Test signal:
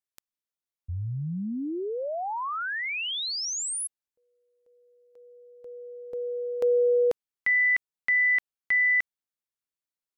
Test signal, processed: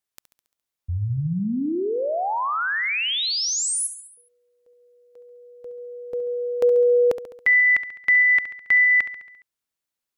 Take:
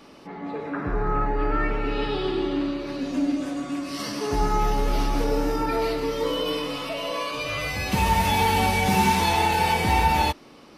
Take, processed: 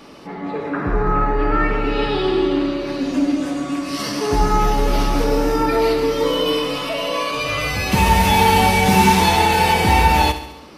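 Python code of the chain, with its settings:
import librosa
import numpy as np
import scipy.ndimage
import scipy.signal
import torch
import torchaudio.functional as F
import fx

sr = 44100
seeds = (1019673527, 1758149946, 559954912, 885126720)

y = fx.echo_feedback(x, sr, ms=69, feedback_pct=58, wet_db=-12)
y = y * 10.0 ** (6.5 / 20.0)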